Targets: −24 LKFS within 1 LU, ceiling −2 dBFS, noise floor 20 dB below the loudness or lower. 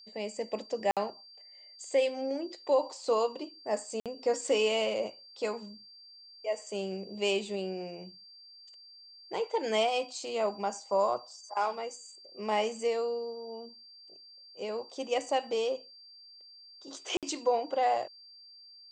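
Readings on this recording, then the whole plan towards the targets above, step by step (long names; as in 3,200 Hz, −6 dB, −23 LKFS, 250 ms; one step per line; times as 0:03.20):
number of dropouts 3; longest dropout 57 ms; interfering tone 4,700 Hz; level of the tone −51 dBFS; integrated loudness −32.5 LKFS; sample peak −16.0 dBFS; target loudness −24.0 LKFS
→ repair the gap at 0:00.91/0:04.00/0:17.17, 57 ms
notch filter 4,700 Hz, Q 30
level +8.5 dB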